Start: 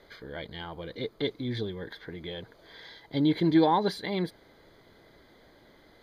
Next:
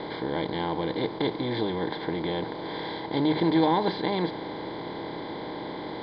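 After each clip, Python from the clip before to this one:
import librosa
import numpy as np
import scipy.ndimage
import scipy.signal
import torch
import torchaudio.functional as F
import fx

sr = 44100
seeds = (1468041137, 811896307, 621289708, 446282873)

y = fx.bin_compress(x, sr, power=0.4)
y = scipy.signal.sosfilt(scipy.signal.butter(8, 4700.0, 'lowpass', fs=sr, output='sos'), y)
y = fx.hum_notches(y, sr, base_hz=50, count=3)
y = y * 10.0 ** (-3.0 / 20.0)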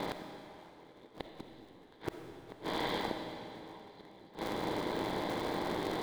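y = fx.cycle_switch(x, sr, every=3, mode='muted')
y = fx.gate_flip(y, sr, shuts_db=-22.0, range_db=-30)
y = fx.rev_freeverb(y, sr, rt60_s=2.8, hf_ratio=0.95, predelay_ms=10, drr_db=4.5)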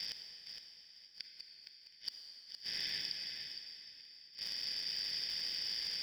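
y = fx.band_shuffle(x, sr, order='4321')
y = fx.echo_feedback(y, sr, ms=464, feedback_pct=17, wet_db=-8)
y = y * 10.0 ** (-4.5 / 20.0)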